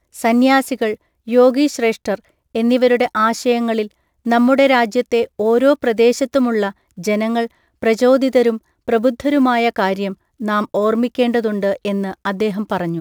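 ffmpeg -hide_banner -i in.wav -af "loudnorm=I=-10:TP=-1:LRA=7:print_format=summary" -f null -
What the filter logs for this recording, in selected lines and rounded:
Input Integrated:    -17.1 LUFS
Input True Peak:      -2.2 dBTP
Input LRA:             3.5 LU
Input Threshold:     -27.2 LUFS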